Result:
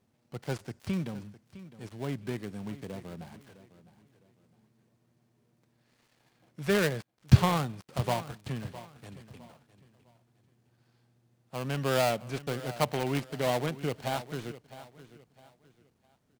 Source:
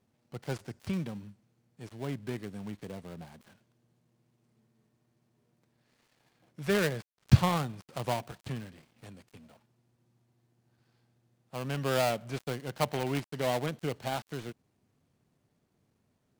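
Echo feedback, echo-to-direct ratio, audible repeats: 31%, −15.5 dB, 2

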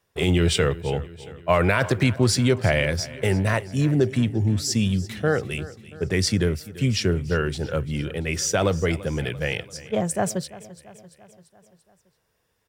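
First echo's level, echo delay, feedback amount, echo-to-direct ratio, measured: −18.0 dB, 340 ms, 58%, −16.0 dB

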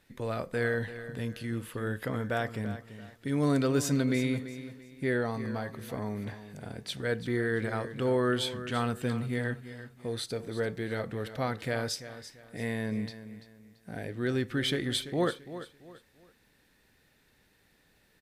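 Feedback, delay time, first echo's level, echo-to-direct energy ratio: 31%, 338 ms, −13.0 dB, −12.5 dB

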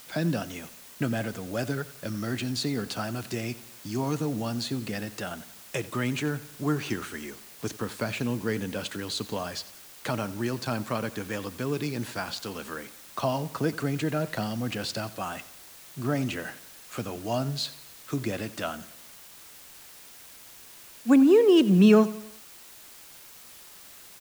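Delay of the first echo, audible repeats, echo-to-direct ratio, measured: 89 ms, 3, −17.0 dB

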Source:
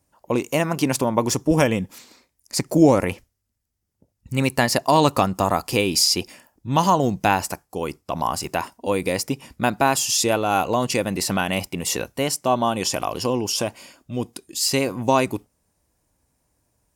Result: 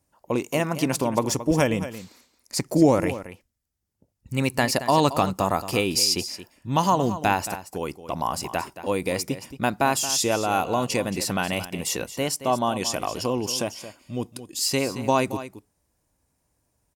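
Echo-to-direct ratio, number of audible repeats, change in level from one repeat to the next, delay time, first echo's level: −13.0 dB, 1, repeats not evenly spaced, 224 ms, −13.0 dB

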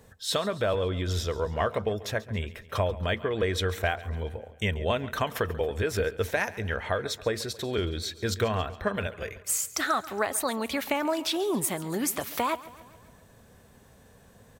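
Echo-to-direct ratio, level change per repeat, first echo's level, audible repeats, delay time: −16.5 dB, −5.0 dB, −18.0 dB, 4, 138 ms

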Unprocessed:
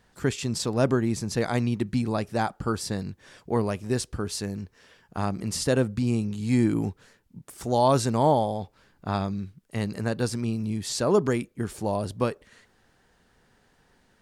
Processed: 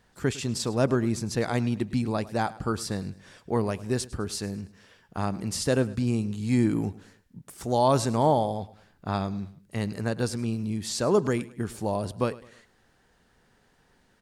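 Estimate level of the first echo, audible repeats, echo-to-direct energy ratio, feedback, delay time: −19.0 dB, 3, −18.5 dB, 40%, 105 ms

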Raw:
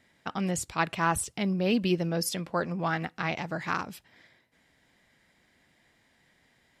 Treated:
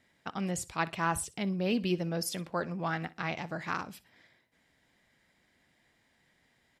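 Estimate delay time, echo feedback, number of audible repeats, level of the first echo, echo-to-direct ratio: 61 ms, 27%, 2, −20.0 dB, −19.5 dB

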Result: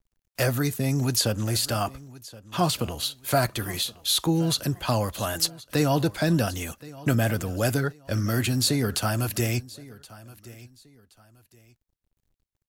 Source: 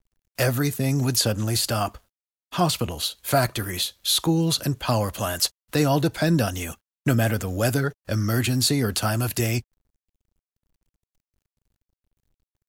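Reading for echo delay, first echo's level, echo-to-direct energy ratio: 1,073 ms, −20.0 dB, −19.5 dB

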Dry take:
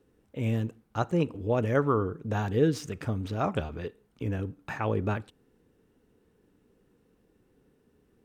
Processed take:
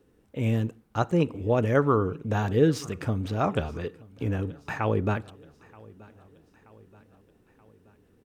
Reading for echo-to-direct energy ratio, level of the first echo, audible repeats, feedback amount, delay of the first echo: −22.0 dB, −23.5 dB, 3, 55%, 928 ms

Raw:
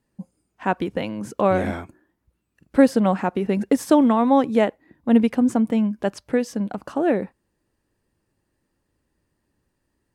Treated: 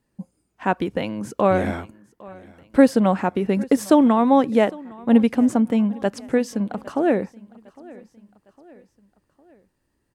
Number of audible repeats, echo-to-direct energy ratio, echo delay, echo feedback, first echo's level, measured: 3, −21.5 dB, 807 ms, 50%, −22.5 dB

